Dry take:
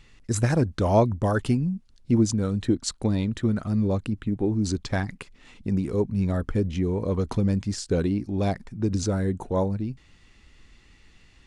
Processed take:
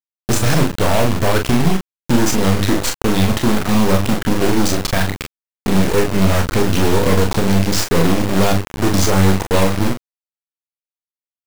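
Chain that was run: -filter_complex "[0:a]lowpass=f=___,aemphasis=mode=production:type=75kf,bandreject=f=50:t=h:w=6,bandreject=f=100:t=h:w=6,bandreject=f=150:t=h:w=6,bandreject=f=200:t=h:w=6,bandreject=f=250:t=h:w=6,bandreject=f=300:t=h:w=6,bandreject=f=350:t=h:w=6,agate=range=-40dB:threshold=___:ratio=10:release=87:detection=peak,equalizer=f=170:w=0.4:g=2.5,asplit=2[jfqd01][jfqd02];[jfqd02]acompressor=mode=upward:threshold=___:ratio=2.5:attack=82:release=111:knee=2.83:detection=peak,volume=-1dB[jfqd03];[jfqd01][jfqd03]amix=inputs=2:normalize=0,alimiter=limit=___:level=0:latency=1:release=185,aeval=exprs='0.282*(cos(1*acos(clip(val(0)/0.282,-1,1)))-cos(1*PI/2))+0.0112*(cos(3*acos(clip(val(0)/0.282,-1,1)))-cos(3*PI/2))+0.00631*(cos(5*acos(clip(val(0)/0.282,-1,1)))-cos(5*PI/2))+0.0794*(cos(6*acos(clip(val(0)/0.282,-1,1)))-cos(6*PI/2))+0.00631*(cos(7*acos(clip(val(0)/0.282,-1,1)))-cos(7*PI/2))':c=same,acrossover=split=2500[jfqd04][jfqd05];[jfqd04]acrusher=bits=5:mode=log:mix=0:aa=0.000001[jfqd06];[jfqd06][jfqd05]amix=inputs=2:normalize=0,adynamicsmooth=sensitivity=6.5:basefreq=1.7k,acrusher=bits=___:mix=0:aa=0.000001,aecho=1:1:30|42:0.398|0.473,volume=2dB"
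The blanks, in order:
8.2k, -50dB, -42dB, -11dB, 3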